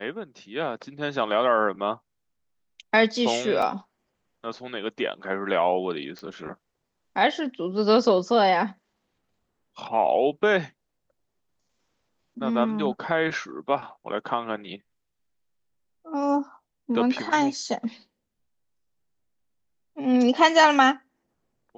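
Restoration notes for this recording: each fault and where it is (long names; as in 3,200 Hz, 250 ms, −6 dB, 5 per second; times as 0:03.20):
0:03.62: drop-out 3.7 ms
0:06.19: click −26 dBFS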